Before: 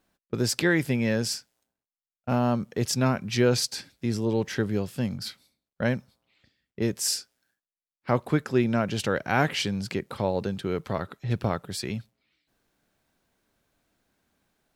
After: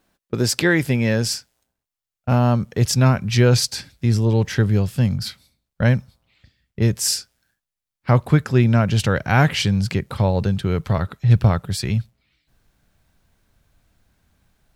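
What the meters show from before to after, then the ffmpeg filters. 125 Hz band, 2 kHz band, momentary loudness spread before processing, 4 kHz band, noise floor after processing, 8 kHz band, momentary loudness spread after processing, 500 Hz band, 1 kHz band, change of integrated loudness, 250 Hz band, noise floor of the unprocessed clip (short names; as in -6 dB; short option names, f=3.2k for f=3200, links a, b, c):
+13.0 dB, +6.0 dB, 9 LU, +6.0 dB, under -85 dBFS, +6.0 dB, 8 LU, +4.0 dB, +5.5 dB, +8.0 dB, +6.0 dB, under -85 dBFS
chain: -af "asubboost=boost=5:cutoff=130,volume=6dB"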